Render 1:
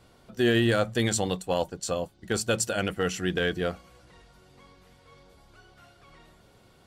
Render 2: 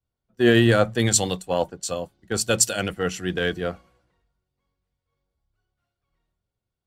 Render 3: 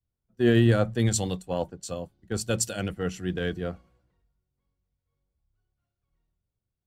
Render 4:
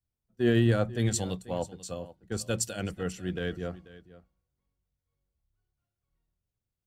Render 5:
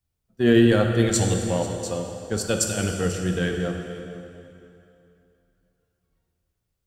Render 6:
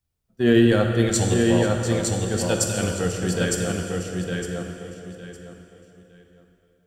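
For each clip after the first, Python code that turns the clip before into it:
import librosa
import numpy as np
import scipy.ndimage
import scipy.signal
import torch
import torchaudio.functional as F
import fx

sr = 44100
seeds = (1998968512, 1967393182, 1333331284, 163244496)

y1 = fx.band_widen(x, sr, depth_pct=100)
y1 = y1 * 10.0 ** (2.0 / 20.0)
y2 = fx.low_shelf(y1, sr, hz=340.0, db=10.0)
y2 = y2 * 10.0 ** (-9.0 / 20.0)
y3 = y2 + 10.0 ** (-18.0 / 20.0) * np.pad(y2, (int(488 * sr / 1000.0), 0))[:len(y2)]
y3 = y3 * 10.0 ** (-3.5 / 20.0)
y4 = fx.rev_plate(y3, sr, seeds[0], rt60_s=2.8, hf_ratio=0.85, predelay_ms=0, drr_db=3.0)
y4 = y4 * 10.0 ** (6.5 / 20.0)
y5 = fx.echo_feedback(y4, sr, ms=909, feedback_pct=24, wet_db=-3.5)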